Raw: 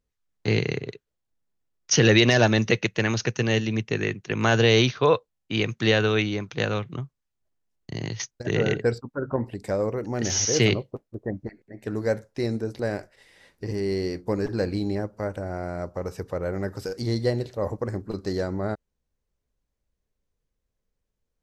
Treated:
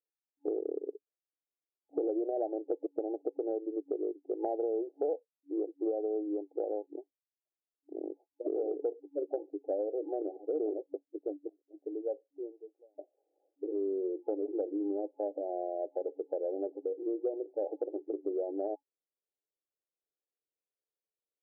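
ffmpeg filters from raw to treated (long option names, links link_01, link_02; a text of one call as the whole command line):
ffmpeg -i in.wav -filter_complex "[0:a]asplit=2[link_01][link_02];[link_01]atrim=end=12.98,asetpts=PTS-STARTPTS,afade=type=out:start_time=10.94:duration=2.04[link_03];[link_02]atrim=start=12.98,asetpts=PTS-STARTPTS,afade=type=in:duration=0.004:curve=hsin[link_04];[link_03][link_04]concat=n=2:v=0:a=1,afftdn=noise_reduction=13:noise_floor=-32,afftfilt=real='re*between(b*sr/4096,280,850)':imag='im*between(b*sr/4096,280,850)':win_size=4096:overlap=0.75,acompressor=threshold=-30dB:ratio=6" out.wav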